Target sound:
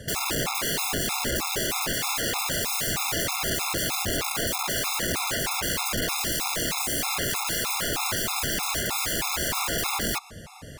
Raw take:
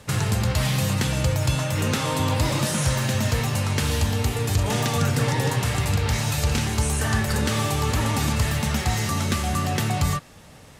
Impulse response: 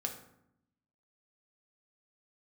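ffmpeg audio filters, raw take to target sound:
-af "acompressor=threshold=-23dB:ratio=10,aeval=exprs='(mod(20*val(0)+1,2)-1)/20':channel_layout=same,afftfilt=real='re*gt(sin(2*PI*3.2*pts/sr)*(1-2*mod(floor(b*sr/1024/690),2)),0)':imag='im*gt(sin(2*PI*3.2*pts/sr)*(1-2*mod(floor(b*sr/1024/690),2)),0)':win_size=1024:overlap=0.75,volume=6.5dB"

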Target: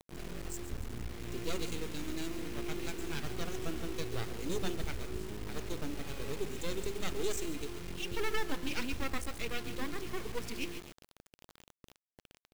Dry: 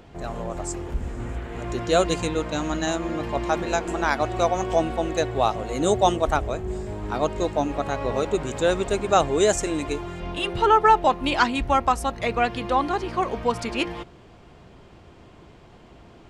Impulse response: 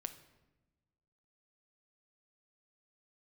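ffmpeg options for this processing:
-af "aeval=exprs='max(val(0),0)':channel_layout=same,aecho=1:1:178|356|534:0.2|0.0519|0.0135,atempo=1.3,firequalizer=gain_entry='entry(420,0);entry(610,-14);entry(2400,0)':delay=0.05:min_phase=1,asoftclip=type=tanh:threshold=-14.5dB,bandreject=frequency=101.9:width_type=h:width=4,bandreject=frequency=203.8:width_type=h:width=4,bandreject=frequency=305.7:width_type=h:width=4,bandreject=frequency=407.6:width_type=h:width=4,bandreject=frequency=509.5:width_type=h:width=4,bandreject=frequency=611.4:width_type=h:width=4,bandreject=frequency=713.3:width_type=h:width=4,bandreject=frequency=815.2:width_type=h:width=4,bandreject=frequency=917.1:width_type=h:width=4,bandreject=frequency=1019:width_type=h:width=4,bandreject=frequency=1120.9:width_type=h:width=4,bandreject=frequency=1222.8:width_type=h:width=4,bandreject=frequency=1324.7:width_type=h:width=4,bandreject=frequency=1426.6:width_type=h:width=4,bandreject=frequency=1528.5:width_type=h:width=4,bandreject=frequency=1630.4:width_type=h:width=4,bandreject=frequency=1732.3:width_type=h:width=4,bandreject=frequency=1834.2:width_type=h:width=4,acrusher=bits=4:dc=4:mix=0:aa=0.000001,volume=-6dB"

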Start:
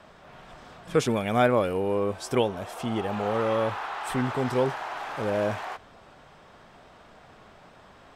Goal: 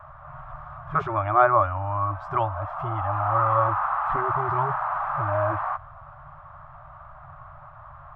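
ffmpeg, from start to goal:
ffmpeg -i in.wav -filter_complex "[0:a]afftfilt=real='re*(1-between(b*sr/4096,160,550))':imag='im*(1-between(b*sr/4096,160,550))':win_size=4096:overlap=0.75,acrossover=split=190[link_01][link_02];[link_01]aeval=exprs='0.0355*sin(PI/2*2.82*val(0)/0.0355)':channel_layout=same[link_03];[link_03][link_02]amix=inputs=2:normalize=0,lowpass=frequency=1200:width_type=q:width=5" out.wav

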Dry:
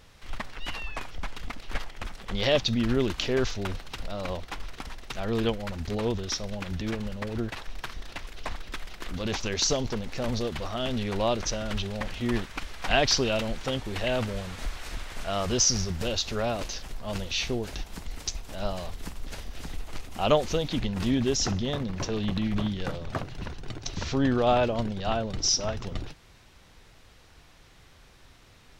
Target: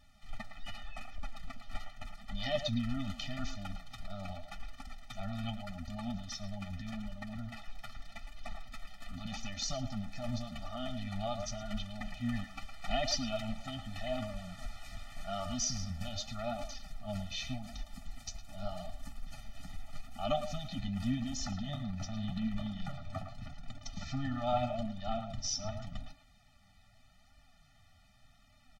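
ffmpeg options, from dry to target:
ffmpeg -i in.wav -filter_complex "[0:a]asplit=2[link_01][link_02];[link_02]adelay=110,highpass=300,lowpass=3400,asoftclip=type=hard:threshold=-17dB,volume=-8dB[link_03];[link_01][link_03]amix=inputs=2:normalize=0,flanger=delay=3.3:depth=7.4:regen=41:speed=0.84:shape=sinusoidal,afftfilt=real='re*eq(mod(floor(b*sr/1024/290),2),0)':imag='im*eq(mod(floor(b*sr/1024/290),2),0)':win_size=1024:overlap=0.75,volume=-4dB" out.wav

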